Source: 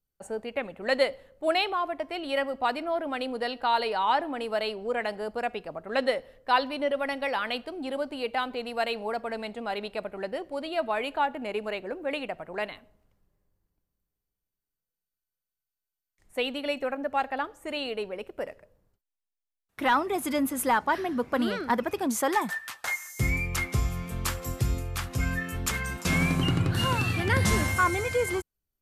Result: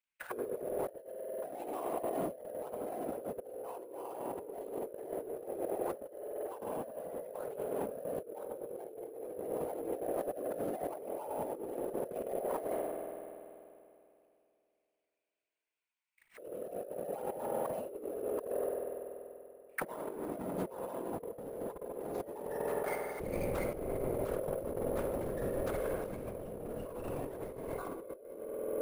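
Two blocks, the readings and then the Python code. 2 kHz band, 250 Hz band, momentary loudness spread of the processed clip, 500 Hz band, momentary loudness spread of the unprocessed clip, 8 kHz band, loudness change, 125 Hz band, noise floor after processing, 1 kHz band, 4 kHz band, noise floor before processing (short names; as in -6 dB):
-20.5 dB, -10.5 dB, 9 LU, -5.5 dB, 9 LU, -15.5 dB, -10.5 dB, -17.0 dB, -83 dBFS, -14.5 dB, under -25 dB, under -85 dBFS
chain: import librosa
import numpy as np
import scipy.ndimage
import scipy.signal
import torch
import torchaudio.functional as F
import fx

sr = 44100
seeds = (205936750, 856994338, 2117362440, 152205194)

y = fx.halfwave_hold(x, sr)
y = fx.hum_notches(y, sr, base_hz=50, count=8)
y = fx.auto_wah(y, sr, base_hz=480.0, top_hz=2400.0, q=5.1, full_db=-28.0, direction='down')
y = fx.echo_feedback(y, sr, ms=80, feedback_pct=58, wet_db=-12)
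y = fx.whisperise(y, sr, seeds[0])
y = fx.low_shelf(y, sr, hz=71.0, db=10.5)
y = fx.rev_spring(y, sr, rt60_s=2.7, pass_ms=(48,), chirp_ms=30, drr_db=6.0)
y = fx.over_compress(y, sr, threshold_db=-42.0, ratio=-1.0)
y = fx.high_shelf(y, sr, hz=10000.0, db=6.5)
y = np.repeat(y[::4], 4)[:len(y)]
y = y * 10.0 ** (1.0 / 20.0)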